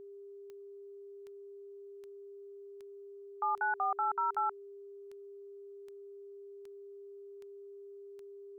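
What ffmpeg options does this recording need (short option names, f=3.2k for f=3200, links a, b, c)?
-af "adeclick=t=4,bandreject=f=400:w=30,afftdn=nr=30:nf=-50"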